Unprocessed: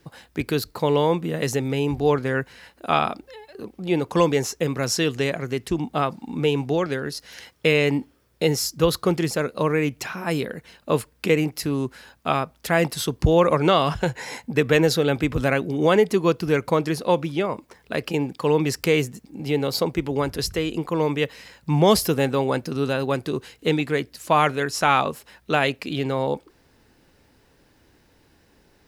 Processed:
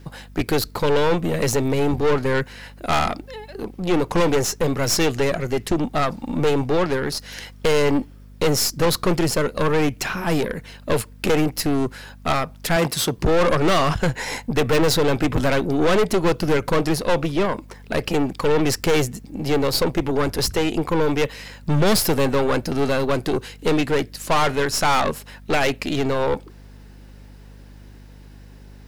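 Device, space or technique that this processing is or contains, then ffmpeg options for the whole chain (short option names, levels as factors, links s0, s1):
valve amplifier with mains hum: -filter_complex "[0:a]aeval=exprs='(tanh(15.8*val(0)+0.6)-tanh(0.6))/15.8':c=same,aeval=exprs='val(0)+0.00282*(sin(2*PI*50*n/s)+sin(2*PI*2*50*n/s)/2+sin(2*PI*3*50*n/s)/3+sin(2*PI*4*50*n/s)/4+sin(2*PI*5*50*n/s)/5)':c=same,asettb=1/sr,asplit=3[s0][s1][s2];[s0]atrim=end=12.764[s3];[s1]atrim=start=12.76:end=13.18,asetpts=PTS-STARTPTS,afade=t=in:d=0.004:c=qsin,afade=t=out:st=0.416:d=0.004:c=qsin,highpass=95[s4];[s2]atrim=start=13.176[s5];[s3][s4]acrossfade=d=0.004:c1=hsin:c2=qsin[s6];[s6][s5]acrossfade=d=0.004:c1=qsin:c2=hsin,volume=2.82"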